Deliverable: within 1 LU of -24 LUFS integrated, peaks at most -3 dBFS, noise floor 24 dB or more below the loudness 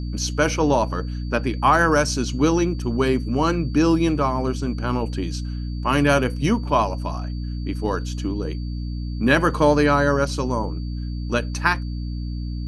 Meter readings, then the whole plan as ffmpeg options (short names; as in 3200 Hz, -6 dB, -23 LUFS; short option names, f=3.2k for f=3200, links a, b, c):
hum 60 Hz; harmonics up to 300 Hz; hum level -25 dBFS; steady tone 4600 Hz; tone level -47 dBFS; loudness -22.0 LUFS; peak -3.5 dBFS; loudness target -24.0 LUFS
-> -af "bandreject=f=60:t=h:w=6,bandreject=f=120:t=h:w=6,bandreject=f=180:t=h:w=6,bandreject=f=240:t=h:w=6,bandreject=f=300:t=h:w=6"
-af "bandreject=f=4.6k:w=30"
-af "volume=-2dB"